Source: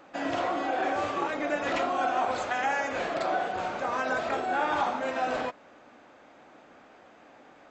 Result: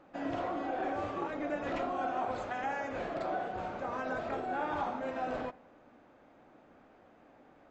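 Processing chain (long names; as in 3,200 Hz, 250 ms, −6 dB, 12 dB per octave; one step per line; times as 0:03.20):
spectral tilt −2.5 dB per octave
on a send: convolution reverb RT60 0.75 s, pre-delay 67 ms, DRR 22 dB
on the sum: level −8 dB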